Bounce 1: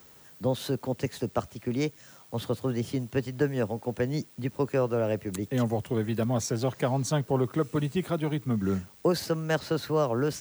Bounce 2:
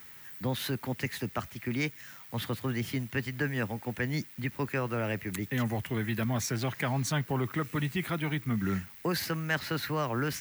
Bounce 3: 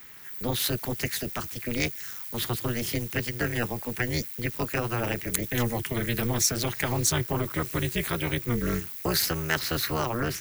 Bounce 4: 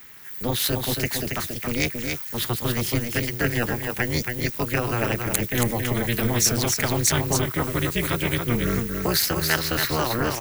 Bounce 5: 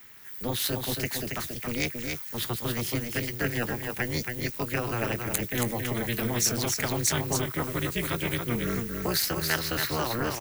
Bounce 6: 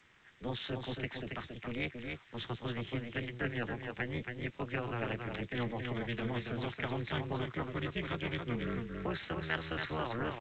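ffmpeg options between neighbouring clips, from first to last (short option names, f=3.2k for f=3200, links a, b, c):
-filter_complex "[0:a]equalizer=f=500:t=o:w=1:g=-8,equalizer=f=2k:t=o:w=1:g=11,equalizer=f=8k:t=o:w=1:g=-5,equalizer=f=16k:t=o:w=1:g=11,asplit=2[a][b];[b]alimiter=limit=-22dB:level=0:latency=1:release=14,volume=2dB[c];[a][c]amix=inputs=2:normalize=0,volume=-8dB"
-filter_complex "[0:a]tremolo=f=240:d=0.974,acrossover=split=130|1100|4300[a][b][c][d];[d]dynaudnorm=f=110:g=7:m=10dB[e];[a][b][c][e]amix=inputs=4:normalize=0,volume=6.5dB"
-filter_complex "[0:a]asplit=2[a][b];[b]aeval=exprs='sgn(val(0))*max(abs(val(0))-0.0126,0)':c=same,volume=-10dB[c];[a][c]amix=inputs=2:normalize=0,aecho=1:1:276:0.562,volume=1.5dB"
-filter_complex "[0:a]acrossover=split=110|2200[a][b][c];[a]alimiter=level_in=7dB:limit=-24dB:level=0:latency=1:release=292,volume=-7dB[d];[c]asplit=2[e][f];[f]adelay=20,volume=-14dB[g];[e][g]amix=inputs=2:normalize=0[h];[d][b][h]amix=inputs=3:normalize=0,volume=-5dB"
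-af "aresample=8000,aresample=44100,volume=-7dB" -ar 16000 -c:a g722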